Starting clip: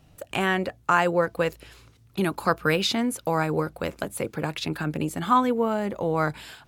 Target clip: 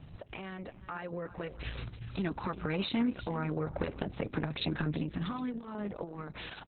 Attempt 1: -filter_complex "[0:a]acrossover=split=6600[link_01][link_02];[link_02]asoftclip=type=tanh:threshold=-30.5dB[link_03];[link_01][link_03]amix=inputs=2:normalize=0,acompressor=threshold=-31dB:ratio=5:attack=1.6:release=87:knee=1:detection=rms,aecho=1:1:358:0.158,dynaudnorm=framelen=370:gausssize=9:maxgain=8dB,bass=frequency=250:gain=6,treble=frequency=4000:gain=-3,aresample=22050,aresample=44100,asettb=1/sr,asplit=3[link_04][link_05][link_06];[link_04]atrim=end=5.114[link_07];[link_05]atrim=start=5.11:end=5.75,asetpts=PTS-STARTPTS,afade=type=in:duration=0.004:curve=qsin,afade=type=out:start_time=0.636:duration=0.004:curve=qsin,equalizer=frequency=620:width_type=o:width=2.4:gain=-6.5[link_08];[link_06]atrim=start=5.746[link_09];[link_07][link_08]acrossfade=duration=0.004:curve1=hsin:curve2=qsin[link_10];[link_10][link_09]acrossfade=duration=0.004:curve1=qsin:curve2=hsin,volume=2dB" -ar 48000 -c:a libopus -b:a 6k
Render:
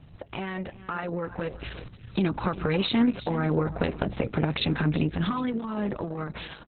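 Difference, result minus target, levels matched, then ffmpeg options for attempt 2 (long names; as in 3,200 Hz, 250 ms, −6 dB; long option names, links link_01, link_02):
downward compressor: peak gain reduction −8 dB
-filter_complex "[0:a]acrossover=split=6600[link_01][link_02];[link_02]asoftclip=type=tanh:threshold=-30.5dB[link_03];[link_01][link_03]amix=inputs=2:normalize=0,acompressor=threshold=-41dB:ratio=5:attack=1.6:release=87:knee=1:detection=rms,aecho=1:1:358:0.158,dynaudnorm=framelen=370:gausssize=9:maxgain=8dB,bass=frequency=250:gain=6,treble=frequency=4000:gain=-3,aresample=22050,aresample=44100,asettb=1/sr,asplit=3[link_04][link_05][link_06];[link_04]atrim=end=5.114[link_07];[link_05]atrim=start=5.11:end=5.75,asetpts=PTS-STARTPTS,afade=type=in:duration=0.004:curve=qsin,afade=type=out:start_time=0.636:duration=0.004:curve=qsin,equalizer=frequency=620:width_type=o:width=2.4:gain=-6.5[link_08];[link_06]atrim=start=5.746[link_09];[link_07][link_08]acrossfade=duration=0.004:curve1=hsin:curve2=qsin[link_10];[link_10][link_09]acrossfade=duration=0.004:curve1=qsin:curve2=hsin,volume=2dB" -ar 48000 -c:a libopus -b:a 6k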